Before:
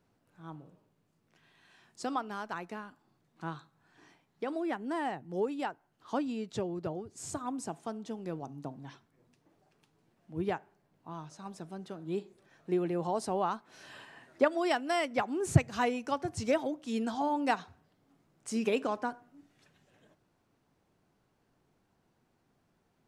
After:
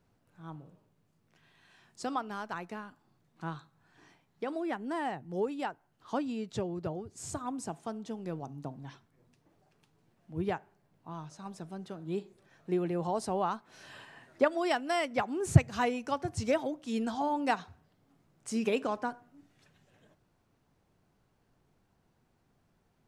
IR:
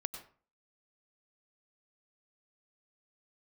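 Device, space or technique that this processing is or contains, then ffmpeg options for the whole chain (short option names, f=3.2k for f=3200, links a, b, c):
low shelf boost with a cut just above: -af "lowshelf=f=110:g=7.5,equalizer=f=300:t=o:w=0.77:g=-2"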